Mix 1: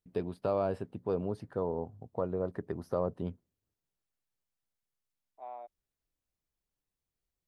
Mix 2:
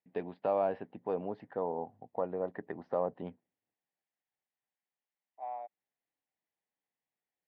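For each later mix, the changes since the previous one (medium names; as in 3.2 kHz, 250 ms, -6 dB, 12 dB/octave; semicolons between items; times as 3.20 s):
master: add cabinet simulation 250–3200 Hz, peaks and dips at 380 Hz -5 dB, 790 Hz +7 dB, 1.3 kHz -5 dB, 1.9 kHz +7 dB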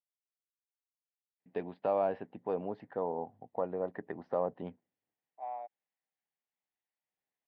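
first voice: entry +1.40 s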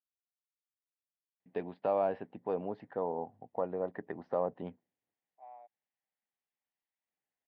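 second voice -11.5 dB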